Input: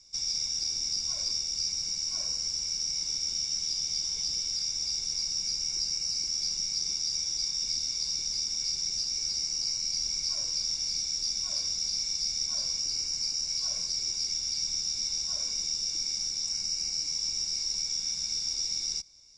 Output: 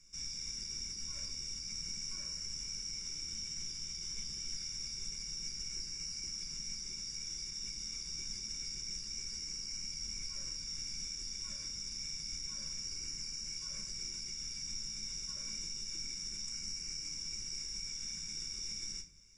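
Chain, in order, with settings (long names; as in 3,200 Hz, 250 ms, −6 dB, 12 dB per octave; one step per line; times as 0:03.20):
brickwall limiter −27 dBFS, peak gain reduction 9.5 dB
phaser with its sweep stopped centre 1,800 Hz, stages 4
convolution reverb RT60 0.40 s, pre-delay 5 ms, DRR 4.5 dB
level +1 dB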